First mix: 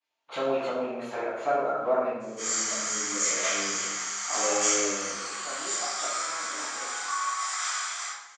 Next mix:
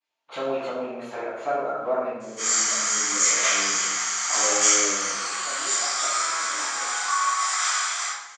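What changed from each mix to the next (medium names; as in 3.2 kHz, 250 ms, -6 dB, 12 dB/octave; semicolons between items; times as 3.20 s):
background +6.5 dB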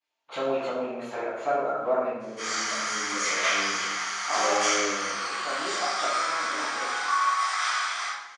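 second voice +6.0 dB; background: remove resonant low-pass 7.4 kHz, resonance Q 9.6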